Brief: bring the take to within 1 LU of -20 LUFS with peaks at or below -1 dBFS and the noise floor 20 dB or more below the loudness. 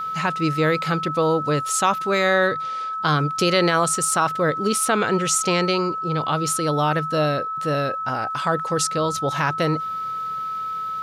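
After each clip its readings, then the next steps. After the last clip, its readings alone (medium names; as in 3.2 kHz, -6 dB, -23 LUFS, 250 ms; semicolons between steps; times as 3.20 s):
tick rate 34 per s; steady tone 1.3 kHz; tone level -25 dBFS; loudness -21.5 LUFS; peak level -7.5 dBFS; loudness target -20.0 LUFS
-> de-click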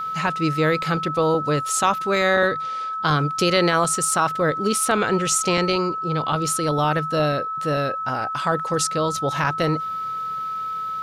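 tick rate 0.45 per s; steady tone 1.3 kHz; tone level -25 dBFS
-> band-stop 1.3 kHz, Q 30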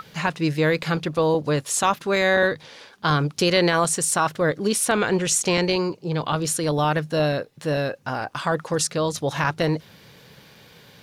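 steady tone not found; loudness -22.5 LUFS; peak level -8.0 dBFS; loudness target -20.0 LUFS
-> trim +2.5 dB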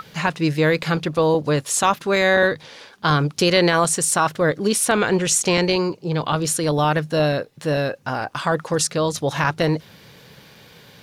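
loudness -20.0 LUFS; peak level -5.5 dBFS; noise floor -48 dBFS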